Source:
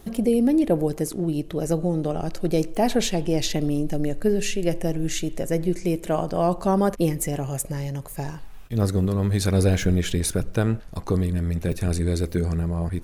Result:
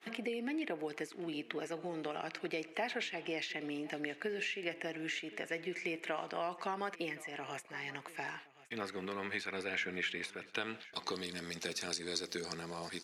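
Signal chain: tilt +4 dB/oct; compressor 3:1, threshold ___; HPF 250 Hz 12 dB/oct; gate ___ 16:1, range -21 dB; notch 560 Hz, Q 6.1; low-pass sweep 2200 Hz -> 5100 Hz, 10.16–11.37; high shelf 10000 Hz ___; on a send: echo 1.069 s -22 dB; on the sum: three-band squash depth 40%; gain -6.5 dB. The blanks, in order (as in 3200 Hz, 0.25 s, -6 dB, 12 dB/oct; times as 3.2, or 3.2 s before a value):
-27 dBFS, -46 dBFS, +3 dB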